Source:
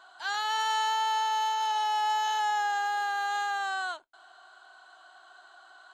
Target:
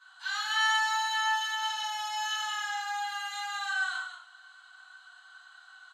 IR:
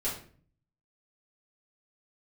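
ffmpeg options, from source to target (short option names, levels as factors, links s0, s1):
-filter_complex "[0:a]highpass=f=1200:w=0.5412,highpass=f=1200:w=1.3066,aecho=1:1:52.48|183.7:0.282|0.398[s0];[1:a]atrim=start_sample=2205,atrim=end_sample=4410,asetrate=28665,aresample=44100[s1];[s0][s1]afir=irnorm=-1:irlink=0,volume=0.473"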